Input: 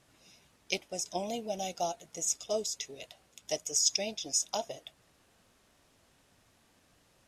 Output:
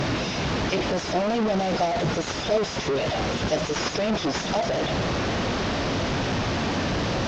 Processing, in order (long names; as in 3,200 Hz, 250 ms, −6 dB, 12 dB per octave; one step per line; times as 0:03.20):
linear delta modulator 32 kbit/s, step −26.5 dBFS
high-pass filter 190 Hz 6 dB per octave
spectral tilt −3 dB per octave
level +7.5 dB